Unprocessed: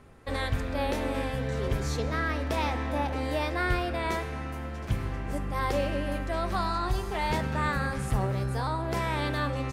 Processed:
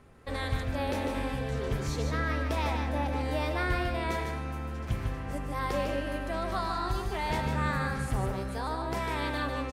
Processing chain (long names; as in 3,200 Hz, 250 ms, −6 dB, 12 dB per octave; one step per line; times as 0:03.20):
single-tap delay 149 ms −5 dB
level −3 dB